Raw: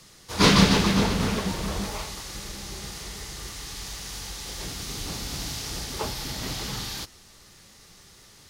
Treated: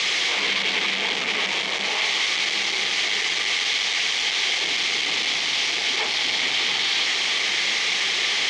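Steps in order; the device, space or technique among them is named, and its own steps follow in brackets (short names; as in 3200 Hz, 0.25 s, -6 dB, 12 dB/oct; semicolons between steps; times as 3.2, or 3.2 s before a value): home computer beeper (infinite clipping; speaker cabinet 540–5500 Hz, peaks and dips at 590 Hz -6 dB, 980 Hz -5 dB, 1400 Hz -7 dB, 2200 Hz +10 dB, 3200 Hz +7 dB, 5000 Hz -3 dB); gain +6.5 dB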